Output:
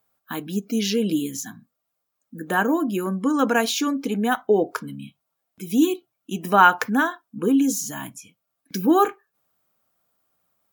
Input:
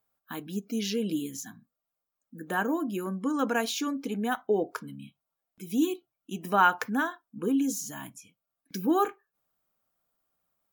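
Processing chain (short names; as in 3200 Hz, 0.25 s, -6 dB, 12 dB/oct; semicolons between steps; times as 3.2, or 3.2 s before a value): HPF 56 Hz; gain +7.5 dB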